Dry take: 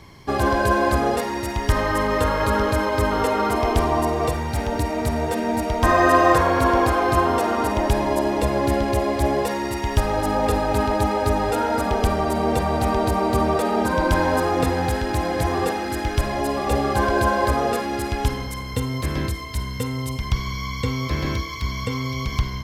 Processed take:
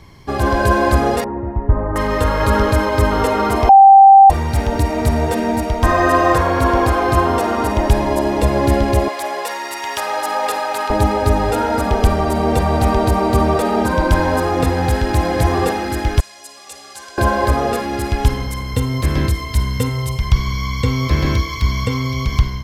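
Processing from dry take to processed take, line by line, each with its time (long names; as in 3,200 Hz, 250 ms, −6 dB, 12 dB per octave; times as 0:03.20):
0:01.24–0:01.96: Bessel low-pass filter 830 Hz, order 4
0:03.69–0:04.30: beep over 783 Hz −6 dBFS
0:09.08–0:10.90: high-pass filter 800 Hz
0:16.20–0:17.18: resonant band-pass 7,200 Hz, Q 1.4
0:19.89–0:20.36: parametric band 260 Hz −14 dB 0.29 octaves
whole clip: low-shelf EQ 110 Hz +6.5 dB; automatic gain control gain up to 6.5 dB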